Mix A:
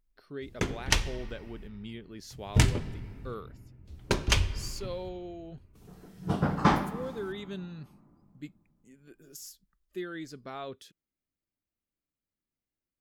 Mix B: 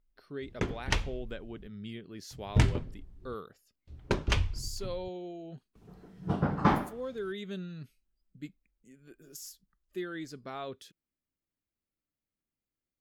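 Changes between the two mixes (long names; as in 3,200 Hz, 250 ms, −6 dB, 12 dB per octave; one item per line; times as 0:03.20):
background: add low-pass filter 2,300 Hz 6 dB per octave
reverb: off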